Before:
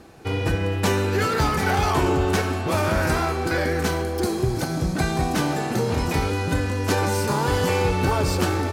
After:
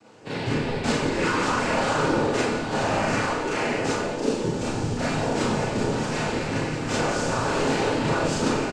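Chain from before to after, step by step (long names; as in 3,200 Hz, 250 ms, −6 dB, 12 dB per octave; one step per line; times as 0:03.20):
cochlear-implant simulation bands 8
echo with shifted repeats 84 ms, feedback 63%, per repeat −60 Hz, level −11 dB
four-comb reverb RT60 0.32 s, combs from 26 ms, DRR −5 dB
level −7 dB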